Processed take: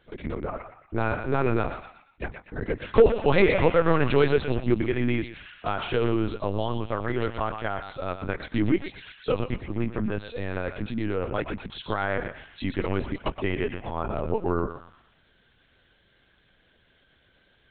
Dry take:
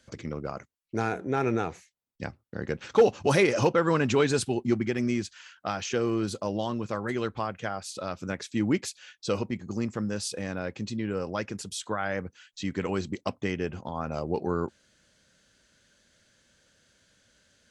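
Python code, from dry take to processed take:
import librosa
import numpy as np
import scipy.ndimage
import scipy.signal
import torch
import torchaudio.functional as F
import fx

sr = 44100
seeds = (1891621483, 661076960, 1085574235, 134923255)

p1 = x + fx.echo_thinned(x, sr, ms=119, feedback_pct=46, hz=780.0, wet_db=-6.0, dry=0)
p2 = fx.lpc_vocoder(p1, sr, seeds[0], excitation='pitch_kept', order=10)
y = p2 * librosa.db_to_amplitude(3.0)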